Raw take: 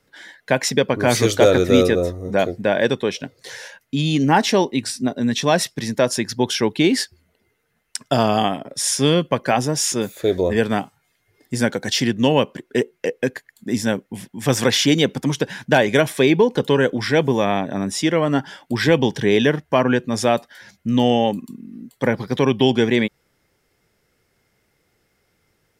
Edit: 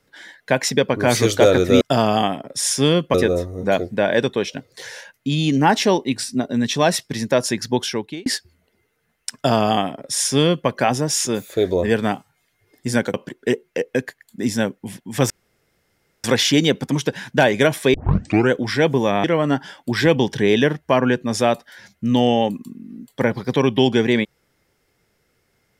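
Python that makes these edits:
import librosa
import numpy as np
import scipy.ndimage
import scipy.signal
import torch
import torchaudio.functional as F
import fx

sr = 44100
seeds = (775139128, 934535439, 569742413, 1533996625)

y = fx.edit(x, sr, fx.fade_out_span(start_s=6.4, length_s=0.53),
    fx.duplicate(start_s=8.02, length_s=1.33, to_s=1.81),
    fx.cut(start_s=11.81, length_s=0.61),
    fx.insert_room_tone(at_s=14.58, length_s=0.94),
    fx.tape_start(start_s=16.28, length_s=0.56),
    fx.cut(start_s=17.58, length_s=0.49), tone=tone)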